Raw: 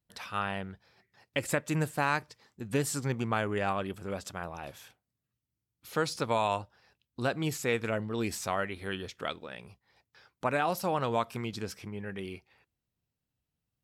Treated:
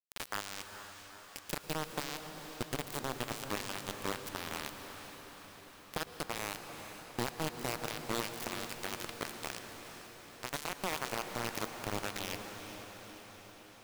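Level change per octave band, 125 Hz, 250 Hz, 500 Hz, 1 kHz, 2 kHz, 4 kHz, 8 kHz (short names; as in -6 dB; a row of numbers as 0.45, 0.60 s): -10.0, -8.0, -9.0, -7.5, -5.0, +0.5, -1.0 dB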